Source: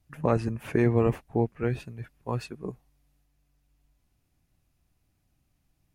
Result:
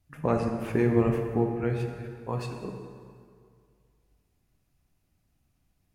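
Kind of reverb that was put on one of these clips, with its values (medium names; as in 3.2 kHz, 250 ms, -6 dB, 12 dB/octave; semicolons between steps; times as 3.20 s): plate-style reverb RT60 2.2 s, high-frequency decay 0.7×, DRR 3 dB; trim -2 dB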